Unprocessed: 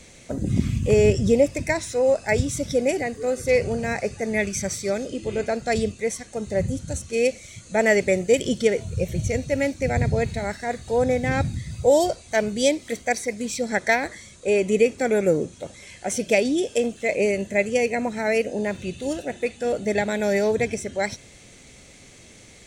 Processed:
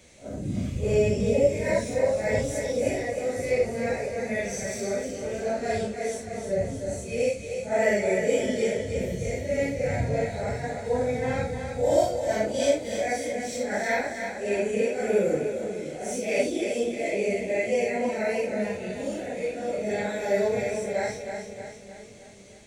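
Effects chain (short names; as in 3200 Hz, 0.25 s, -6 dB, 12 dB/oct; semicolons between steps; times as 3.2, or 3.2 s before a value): phase scrambler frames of 0.2 s; bell 610 Hz +4 dB 0.65 oct; split-band echo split 360 Hz, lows 0.508 s, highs 0.309 s, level -7 dB; gain -6.5 dB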